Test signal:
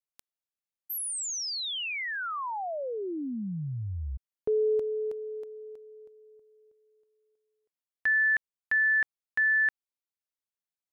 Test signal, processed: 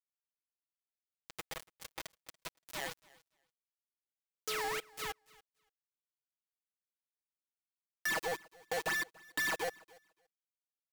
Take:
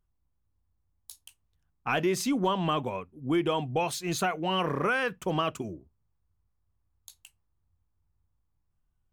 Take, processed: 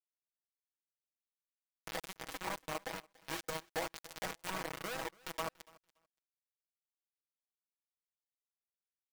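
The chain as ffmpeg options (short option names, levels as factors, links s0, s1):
-filter_complex "[0:a]aresample=16000,aeval=exprs='sgn(val(0))*max(abs(val(0))-0.0075,0)':c=same,aresample=44100,acrusher=samples=20:mix=1:aa=0.000001:lfo=1:lforange=32:lforate=2.2,alimiter=level_in=1.41:limit=0.0631:level=0:latency=1:release=61,volume=0.708,lowshelf=f=390:t=q:w=1.5:g=-8.5,bandreject=f=60:t=h:w=6,bandreject=f=120:t=h:w=6,bandreject=f=180:t=h:w=6,bandreject=f=240:t=h:w=6,bandreject=f=300:t=h:w=6,bandreject=f=360:t=h:w=6,acrusher=bits=4:mix=0:aa=0.000001,aecho=1:1:6.2:0.59,acompressor=threshold=0.0282:ratio=1.5:release=307,asplit=2[s0][s1];[s1]aecho=0:1:286|572:0.0631|0.0101[s2];[s0][s2]amix=inputs=2:normalize=0,adynamicequalizer=threshold=0.00501:dfrequency=2200:dqfactor=0.7:tfrequency=2200:tqfactor=0.7:attack=5:release=100:ratio=0.375:range=2.5:mode=cutabove:tftype=highshelf,volume=0.596"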